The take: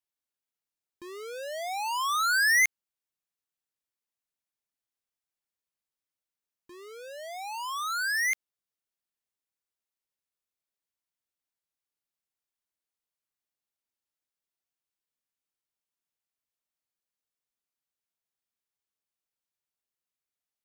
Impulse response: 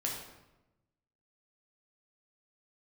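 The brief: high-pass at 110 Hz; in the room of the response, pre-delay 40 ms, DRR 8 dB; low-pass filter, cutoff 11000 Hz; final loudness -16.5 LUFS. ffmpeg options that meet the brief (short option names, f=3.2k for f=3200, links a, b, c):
-filter_complex "[0:a]highpass=110,lowpass=11k,asplit=2[a][b];[1:a]atrim=start_sample=2205,adelay=40[c];[b][c]afir=irnorm=-1:irlink=0,volume=-11dB[d];[a][d]amix=inputs=2:normalize=0,volume=10dB"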